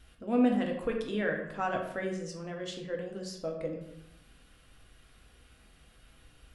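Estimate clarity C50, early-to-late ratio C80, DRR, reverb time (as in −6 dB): 5.5 dB, 8.0 dB, 0.5 dB, 0.85 s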